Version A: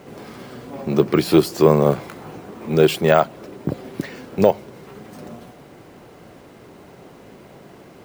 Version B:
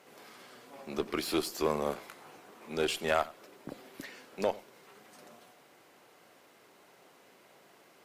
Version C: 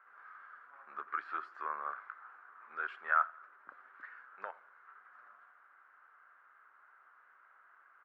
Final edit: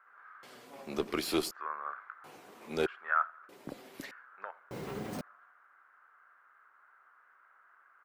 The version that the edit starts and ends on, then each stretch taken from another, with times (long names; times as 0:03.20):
C
0:00.43–0:01.51: punch in from B
0:02.24–0:02.86: punch in from B
0:03.49–0:04.11: punch in from B
0:04.71–0:05.21: punch in from A